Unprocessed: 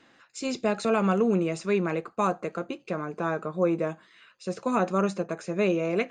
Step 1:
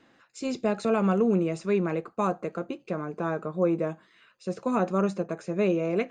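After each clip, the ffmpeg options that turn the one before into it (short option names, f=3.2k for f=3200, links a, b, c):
-af "tiltshelf=f=970:g=3,volume=-2dB"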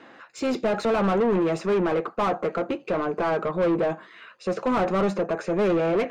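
-filter_complex "[0:a]asplit=2[a][b];[b]highpass=f=720:p=1,volume=26dB,asoftclip=type=tanh:threshold=-13dB[c];[a][c]amix=inputs=2:normalize=0,lowpass=f=1.2k:p=1,volume=-6dB,volume=-1.5dB"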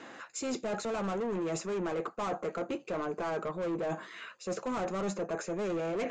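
-af "areverse,acompressor=threshold=-33dB:ratio=5,areverse,lowpass=f=7.1k:t=q:w=5.1"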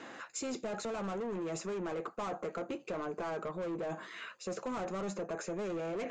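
-af "acompressor=threshold=-35dB:ratio=6"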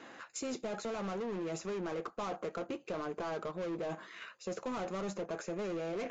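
-filter_complex "[0:a]asplit=2[a][b];[b]acrusher=bits=5:mix=0:aa=0.5,volume=-6.5dB[c];[a][c]amix=inputs=2:normalize=0,volume=-4dB" -ar 16000 -c:a libvorbis -b:a 64k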